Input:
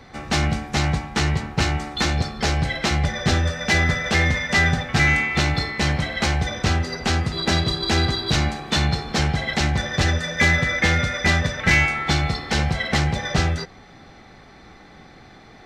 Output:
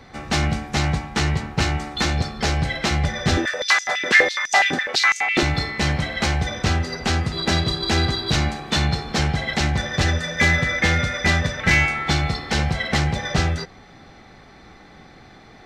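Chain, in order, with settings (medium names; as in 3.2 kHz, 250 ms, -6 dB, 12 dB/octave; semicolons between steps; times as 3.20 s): 3.37–5.43 s: step-sequenced high-pass 12 Hz 310–6400 Hz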